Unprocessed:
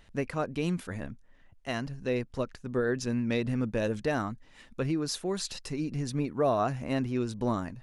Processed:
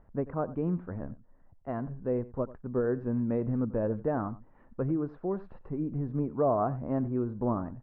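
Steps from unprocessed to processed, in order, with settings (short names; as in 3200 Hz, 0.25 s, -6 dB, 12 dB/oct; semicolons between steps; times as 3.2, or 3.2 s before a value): LPF 1200 Hz 24 dB/oct; on a send: echo 91 ms -18 dB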